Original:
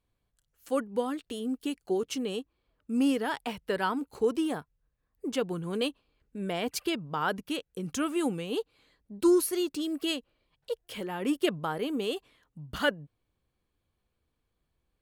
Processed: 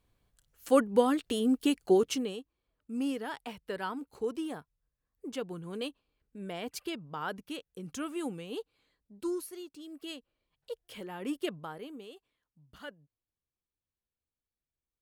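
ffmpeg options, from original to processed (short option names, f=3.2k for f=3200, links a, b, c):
-af "volume=15.5dB,afade=t=out:st=1.94:d=0.42:silence=0.237137,afade=t=out:st=8.56:d=1.17:silence=0.334965,afade=t=in:st=9.73:d=1:silence=0.316228,afade=t=out:st=11.37:d=0.74:silence=0.266073"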